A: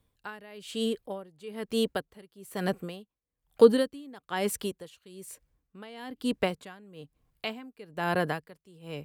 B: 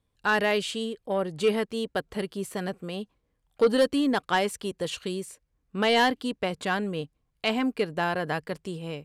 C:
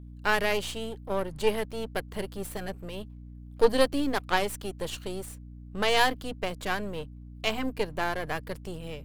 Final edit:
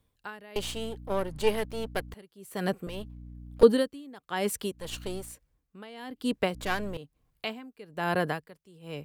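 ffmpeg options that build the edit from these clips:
-filter_complex "[2:a]asplit=4[s0][s1][s2][s3];[0:a]asplit=5[s4][s5][s6][s7][s8];[s4]atrim=end=0.562[s9];[s0]atrim=start=0.558:end=2.142[s10];[s5]atrim=start=2.138:end=2.872[s11];[s1]atrim=start=2.868:end=3.632[s12];[s6]atrim=start=3.628:end=4.95[s13];[s2]atrim=start=4.71:end=5.39[s14];[s7]atrim=start=5.15:end=6.542[s15];[s3]atrim=start=6.538:end=6.972[s16];[s8]atrim=start=6.968[s17];[s9][s10]acrossfade=d=0.004:c1=hsin:c2=hsin[s18];[s18][s11]acrossfade=d=0.004:c1=hsin:c2=hsin[s19];[s19][s12]acrossfade=d=0.004:c1=hsin:c2=hsin[s20];[s20][s13]acrossfade=d=0.004:c1=hsin:c2=hsin[s21];[s21][s14]acrossfade=d=0.24:c1=tri:c2=tri[s22];[s22][s15]acrossfade=d=0.24:c1=tri:c2=tri[s23];[s23][s16]acrossfade=d=0.004:c1=hsin:c2=hsin[s24];[s24][s17]acrossfade=d=0.004:c1=hsin:c2=hsin"

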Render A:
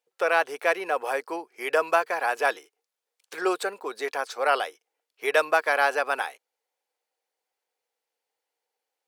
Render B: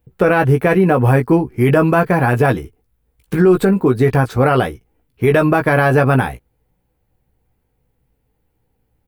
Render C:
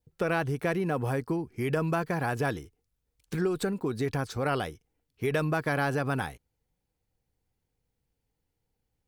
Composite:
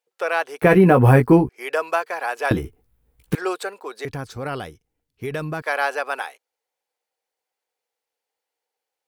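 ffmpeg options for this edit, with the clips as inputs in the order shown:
-filter_complex "[1:a]asplit=2[s0][s1];[0:a]asplit=4[s2][s3][s4][s5];[s2]atrim=end=0.622[s6];[s0]atrim=start=0.618:end=1.492[s7];[s3]atrim=start=1.488:end=2.512[s8];[s1]atrim=start=2.508:end=3.352[s9];[s4]atrim=start=3.348:end=4.052[s10];[2:a]atrim=start=4.048:end=5.622[s11];[s5]atrim=start=5.618[s12];[s6][s7]acrossfade=d=0.004:c1=hsin:c2=hsin[s13];[s13][s8]acrossfade=d=0.004:c1=hsin:c2=hsin[s14];[s14][s9]acrossfade=d=0.004:c1=hsin:c2=hsin[s15];[s15][s10]acrossfade=d=0.004:c1=hsin:c2=hsin[s16];[s16][s11]acrossfade=d=0.004:c1=hsin:c2=hsin[s17];[s17][s12]acrossfade=d=0.004:c1=hsin:c2=hsin"

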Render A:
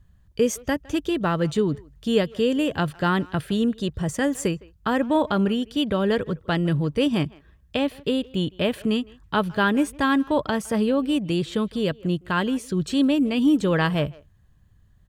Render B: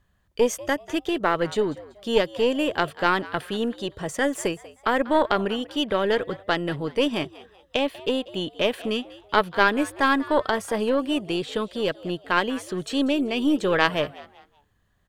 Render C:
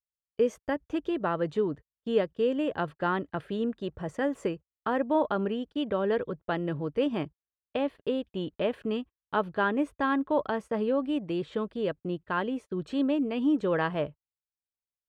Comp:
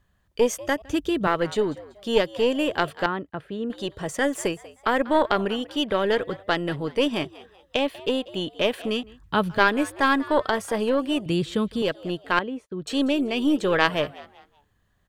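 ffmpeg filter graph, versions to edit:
-filter_complex "[0:a]asplit=3[s0][s1][s2];[2:a]asplit=2[s3][s4];[1:a]asplit=6[s5][s6][s7][s8][s9][s10];[s5]atrim=end=0.822[s11];[s0]atrim=start=0.818:end=1.272[s12];[s6]atrim=start=1.268:end=3.062[s13];[s3]atrim=start=3.058:end=3.702[s14];[s7]atrim=start=3.698:end=9.032[s15];[s1]atrim=start=9.028:end=9.582[s16];[s8]atrim=start=9.578:end=11.262[s17];[s2]atrim=start=11.258:end=11.822[s18];[s9]atrim=start=11.818:end=12.392[s19];[s4]atrim=start=12.388:end=12.872[s20];[s10]atrim=start=12.868[s21];[s11][s12]acrossfade=d=0.004:c1=hsin:c2=hsin[s22];[s22][s13]acrossfade=d=0.004:c1=hsin:c2=hsin[s23];[s23][s14]acrossfade=d=0.004:c1=hsin:c2=hsin[s24];[s24][s15]acrossfade=d=0.004:c1=hsin:c2=hsin[s25];[s25][s16]acrossfade=d=0.004:c1=hsin:c2=hsin[s26];[s26][s17]acrossfade=d=0.004:c1=hsin:c2=hsin[s27];[s27][s18]acrossfade=d=0.004:c1=hsin:c2=hsin[s28];[s28][s19]acrossfade=d=0.004:c1=hsin:c2=hsin[s29];[s29][s20]acrossfade=d=0.004:c1=hsin:c2=hsin[s30];[s30][s21]acrossfade=d=0.004:c1=hsin:c2=hsin"

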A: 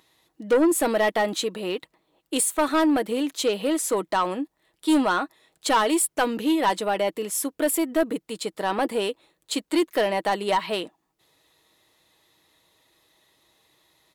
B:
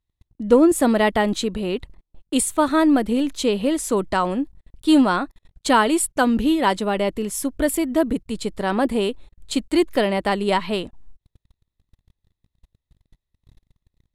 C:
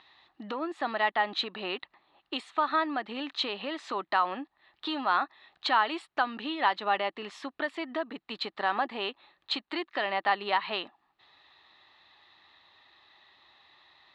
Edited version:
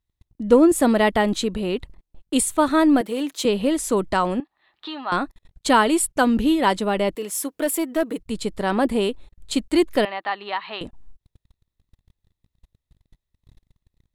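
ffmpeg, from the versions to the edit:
-filter_complex "[0:a]asplit=2[s0][s1];[2:a]asplit=2[s2][s3];[1:a]asplit=5[s4][s5][s6][s7][s8];[s4]atrim=end=3.012[s9];[s0]atrim=start=3.008:end=3.452[s10];[s5]atrim=start=3.448:end=4.402[s11];[s2]atrim=start=4.398:end=5.122[s12];[s6]atrim=start=5.118:end=7.152[s13];[s1]atrim=start=7.148:end=8.192[s14];[s7]atrim=start=8.188:end=10.052[s15];[s3]atrim=start=10.048:end=10.812[s16];[s8]atrim=start=10.808[s17];[s9][s10]acrossfade=d=0.004:c1=hsin:c2=hsin[s18];[s18][s11]acrossfade=d=0.004:c1=hsin:c2=hsin[s19];[s19][s12]acrossfade=d=0.004:c1=hsin:c2=hsin[s20];[s20][s13]acrossfade=d=0.004:c1=hsin:c2=hsin[s21];[s21][s14]acrossfade=d=0.004:c1=hsin:c2=hsin[s22];[s22][s15]acrossfade=d=0.004:c1=hsin:c2=hsin[s23];[s23][s16]acrossfade=d=0.004:c1=hsin:c2=hsin[s24];[s24][s17]acrossfade=d=0.004:c1=hsin:c2=hsin"

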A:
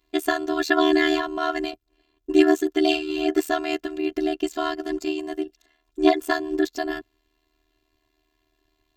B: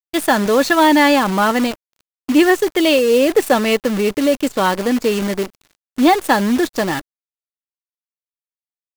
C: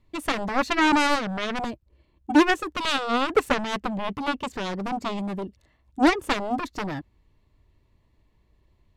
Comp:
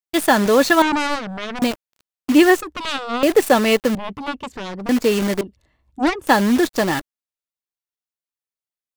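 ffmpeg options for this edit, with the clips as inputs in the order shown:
-filter_complex "[2:a]asplit=4[s0][s1][s2][s3];[1:a]asplit=5[s4][s5][s6][s7][s8];[s4]atrim=end=0.822[s9];[s0]atrim=start=0.818:end=1.622[s10];[s5]atrim=start=1.618:end=2.612[s11];[s1]atrim=start=2.608:end=3.232[s12];[s6]atrim=start=3.228:end=3.952[s13];[s2]atrim=start=3.948:end=4.892[s14];[s7]atrim=start=4.888:end=5.412[s15];[s3]atrim=start=5.408:end=6.272[s16];[s8]atrim=start=6.268[s17];[s9][s10]acrossfade=d=0.004:c1=hsin:c2=hsin[s18];[s18][s11]acrossfade=d=0.004:c1=hsin:c2=hsin[s19];[s19][s12]acrossfade=d=0.004:c1=hsin:c2=hsin[s20];[s20][s13]acrossfade=d=0.004:c1=hsin:c2=hsin[s21];[s21][s14]acrossfade=d=0.004:c1=hsin:c2=hsin[s22];[s22][s15]acrossfade=d=0.004:c1=hsin:c2=hsin[s23];[s23][s16]acrossfade=d=0.004:c1=hsin:c2=hsin[s24];[s24][s17]acrossfade=d=0.004:c1=hsin:c2=hsin"

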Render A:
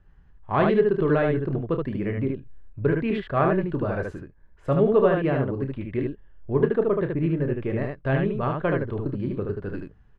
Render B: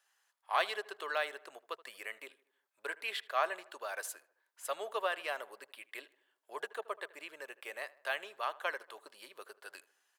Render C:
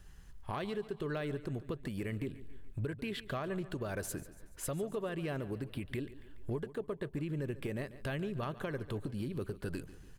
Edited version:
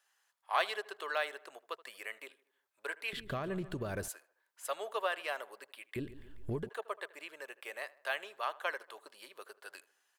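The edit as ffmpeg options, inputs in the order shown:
-filter_complex "[2:a]asplit=2[s0][s1];[1:a]asplit=3[s2][s3][s4];[s2]atrim=end=3.132[s5];[s0]atrim=start=3.128:end=4.082[s6];[s3]atrim=start=4.078:end=5.962[s7];[s1]atrim=start=5.958:end=6.692[s8];[s4]atrim=start=6.688[s9];[s5][s6]acrossfade=d=0.004:c1=hsin:c2=hsin[s10];[s10][s7]acrossfade=d=0.004:c1=hsin:c2=hsin[s11];[s11][s8]acrossfade=d=0.004:c1=hsin:c2=hsin[s12];[s12][s9]acrossfade=d=0.004:c1=hsin:c2=hsin"

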